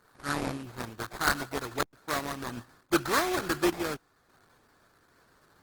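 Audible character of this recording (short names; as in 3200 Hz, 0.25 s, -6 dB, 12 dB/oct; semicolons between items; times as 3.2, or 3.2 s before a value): aliases and images of a low sample rate 2900 Hz, jitter 20%; random-step tremolo; Opus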